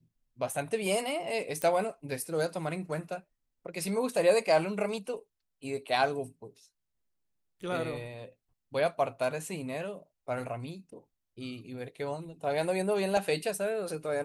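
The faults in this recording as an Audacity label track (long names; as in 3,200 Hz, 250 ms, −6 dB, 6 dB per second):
1.620000	1.620000	click −17 dBFS
13.170000	13.170000	drop-out 2.1 ms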